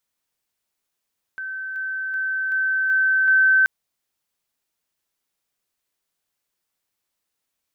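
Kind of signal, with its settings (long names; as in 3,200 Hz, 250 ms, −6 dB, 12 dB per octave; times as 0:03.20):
level staircase 1,540 Hz −27.5 dBFS, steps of 3 dB, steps 6, 0.38 s 0.00 s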